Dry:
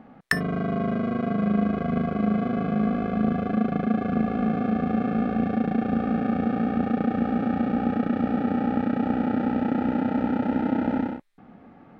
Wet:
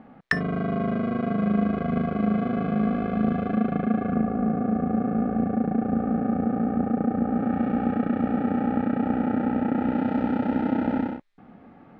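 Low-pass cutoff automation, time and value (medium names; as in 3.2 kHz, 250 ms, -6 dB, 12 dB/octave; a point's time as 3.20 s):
3.40 s 4.4 kHz
4.07 s 2.2 kHz
4.34 s 1.2 kHz
7.26 s 1.2 kHz
7.66 s 2.5 kHz
9.72 s 2.5 kHz
10.15 s 5.7 kHz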